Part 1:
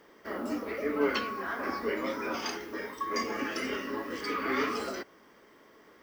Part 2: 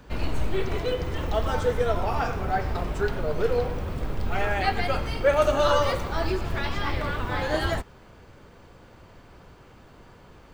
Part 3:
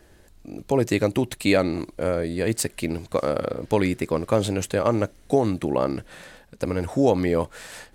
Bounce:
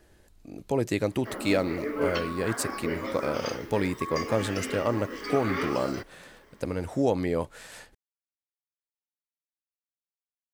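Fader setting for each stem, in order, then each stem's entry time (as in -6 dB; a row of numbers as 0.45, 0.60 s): -1.0 dB, off, -5.5 dB; 1.00 s, off, 0.00 s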